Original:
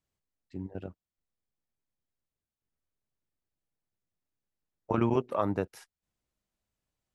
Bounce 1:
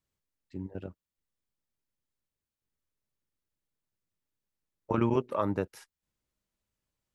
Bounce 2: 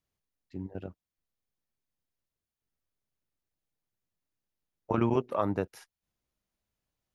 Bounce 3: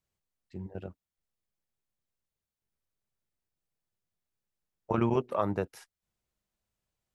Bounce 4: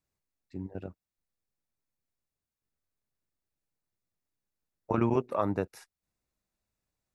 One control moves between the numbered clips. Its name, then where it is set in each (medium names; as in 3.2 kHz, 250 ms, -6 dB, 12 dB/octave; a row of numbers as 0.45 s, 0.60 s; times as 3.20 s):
band-stop, frequency: 720 Hz, 7.9 kHz, 280 Hz, 3.1 kHz